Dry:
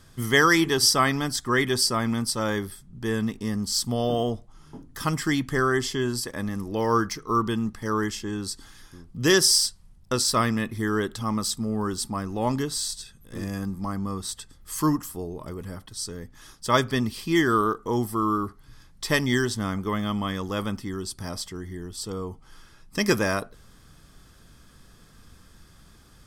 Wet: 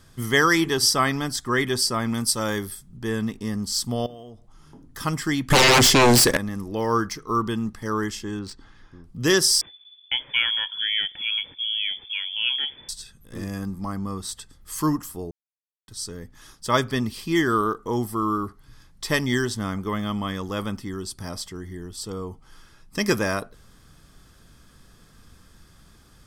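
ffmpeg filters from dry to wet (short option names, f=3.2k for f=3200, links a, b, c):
-filter_complex "[0:a]asettb=1/sr,asplit=3[a][b][c];[a]atrim=end=2.144[d];[b]atrim=start=2.14:end=2.97,asetpts=PTS-STARTPTS,afade=t=in:d=0.004:c=qsin,afade=t=out:st=0.826:d=0.004:c=qsin,highshelf=f=5k:g=8.5[e];[c]atrim=start=2.966[f];[d][e]acrossfade=d=0.004:c1=hsin:c2=qsin[g];[g][f]acrossfade=d=0.004:c1=qsin:c2=hsin,asettb=1/sr,asplit=3[h][i][j];[h]atrim=end=4.064[k];[i]atrim=start=4.06:end=4.84,asetpts=PTS-STARTPTS,afade=t=in:d=0.004:c=qsin,afade=t=out:st=0.776:d=0.004:c=qsin,acompressor=threshold=-44dB:ratio=3:attack=3.2:release=140:knee=1:detection=peak[l];[j]atrim=start=4.836[m];[k][l]acrossfade=d=0.004:c1=hsin:c2=qsin[n];[n][m]acrossfade=d=0.004:c1=qsin:c2=hsin,asettb=1/sr,asplit=3[o][p][q];[o]atrim=end=5.504[r];[p]atrim=start=5.5:end=6.37,asetpts=PTS-STARTPTS,afade=t=in:d=0.004:c=qsin,afade=t=out:st=0.866:d=0.004:c=qsin,aeval=exprs='0.266*sin(PI/2*5.62*val(0)/0.266)':c=same[s];[q]atrim=start=6.366[t];[r][s]acrossfade=d=0.004:c1=hsin:c2=qsin[u];[u][t]acrossfade=d=0.004:c1=qsin:c2=hsin,asettb=1/sr,asplit=3[v][w][x];[v]atrim=end=8.394[y];[w]atrim=start=8.39:end=9.04,asetpts=PTS-STARTPTS,afade=t=in:d=0.004:c=qsin,afade=t=out:st=0.646:d=0.004:c=qsin,adynamicsmooth=sensitivity=3:basefreq=2.8k[z];[x]atrim=start=9.036[aa];[y][z]acrossfade=d=0.004:c1=hsin:c2=qsin[ab];[ab][aa]acrossfade=d=0.004:c1=qsin:c2=hsin,asettb=1/sr,asplit=3[ac][ad][ae];[ac]atrim=end=9.614[af];[ad]atrim=start=9.61:end=12.89,asetpts=PTS-STARTPTS,afade=t=in:d=0.004:c=qsin,afade=t=out:st=3.276:d=0.004:c=qsin,lowpass=f=3k:t=q:w=0.5098,lowpass=f=3k:t=q:w=0.6013,lowpass=f=3k:t=q:w=0.9,lowpass=f=3k:t=q:w=2.563,afreqshift=-3500[ag];[ae]atrim=start=12.886[ah];[af][ag]acrossfade=d=0.004:c1=hsin:c2=qsin[ai];[ai][ah]acrossfade=d=0.004:c1=qsin:c2=hsin,asplit=3[aj][ak][al];[aj]atrim=end=15.31,asetpts=PTS-STARTPTS,afade=t=out:st=15.306:d=0.004:c=hsin[am];[ak]atrim=start=15.31:end=15.88,asetpts=PTS-STARTPTS,volume=0[an];[al]atrim=start=15.88,asetpts=PTS-STARTPTS,afade=t=in:d=0.004:c=hsin[ao];[am][an][ao]concat=n=3:v=0:a=1"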